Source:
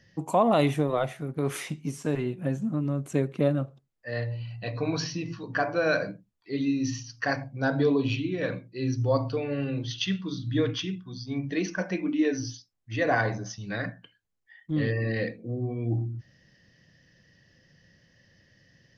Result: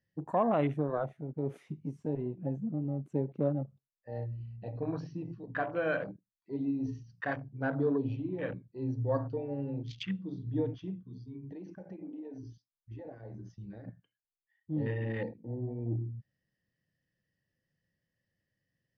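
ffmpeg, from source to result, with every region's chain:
-filter_complex "[0:a]asettb=1/sr,asplit=3[a][b][c];[a]atrim=end=11.074[d];[b]atrim=start=11.07:end=13.88,asetpts=PTS-STARTPTS,afade=t=in:d=0.004:c=qsin,afade=t=out:st=2.806:d=0.004:c=qsin,asuperstop=centerf=740:order=4:qfactor=7,acompressor=threshold=-33dB:ratio=20:attack=3.2:release=140:knee=1:detection=peak[e];[c]atrim=start=13.876[f];[d][e]acrossfade=d=0.004:c1=hsin:c2=qsin[g];[g][f]acrossfade=d=0.004:c1=qsin:c2=hsin,afwtdn=0.0224,highshelf=f=4.3k:g=-10.5,volume=-6dB"

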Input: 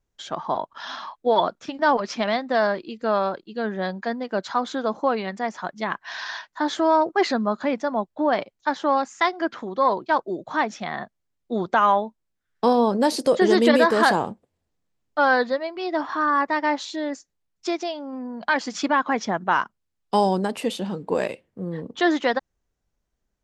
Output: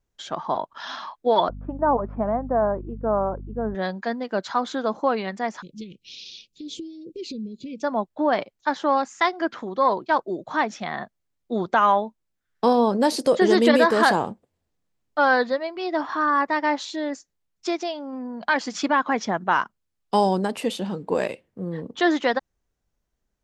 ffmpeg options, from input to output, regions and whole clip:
-filter_complex "[0:a]asettb=1/sr,asplit=3[a][b][c];[a]atrim=end=1.494[d];[b]atrim=start=1.49:end=3.75,asetpts=PTS-STARTPTS,afade=t=in:d=0.004:c=qsin,afade=t=out:st=2.256:d=0.004:c=qsin,lowpass=f=1.1k:w=0.5412,lowpass=f=1.1k:w=1.3066,aeval=exprs='val(0)+0.0178*(sin(2*PI*50*n/s)+sin(2*PI*2*50*n/s)/2+sin(2*PI*3*50*n/s)/3+sin(2*PI*4*50*n/s)/4+sin(2*PI*5*50*n/s)/5)':c=same[e];[c]atrim=start=3.746[f];[d][e]acrossfade=d=0.004:c1=hsin:c2=qsin[g];[g][f]acrossfade=d=0.004:c1=qsin:c2=hsin,asettb=1/sr,asplit=3[h][i][j];[h]atrim=end=5.624[k];[i]atrim=start=5.62:end=7.83,asetpts=PTS-STARTPTS,afade=t=in:d=0.004:c=qsin,afade=t=out:st=2.206:d=0.004:c=qsin,bass=f=250:g=7,treble=f=4k:g=1,acompressor=threshold=-31dB:ratio=4:attack=3.2:release=140:knee=1:detection=peak,asuperstop=centerf=1100:order=20:qfactor=0.59[l];[j]atrim=start=7.826[m];[k][l]acrossfade=d=0.004:c1=hsin:c2=qsin[n];[n][m]acrossfade=d=0.004:c1=qsin:c2=hsin"

